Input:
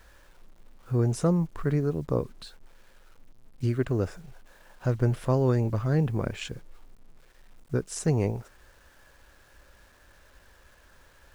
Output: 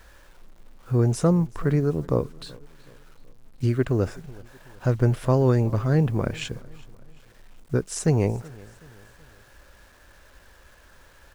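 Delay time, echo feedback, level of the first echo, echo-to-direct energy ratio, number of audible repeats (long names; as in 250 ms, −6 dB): 376 ms, 46%, −23.0 dB, −22.0 dB, 2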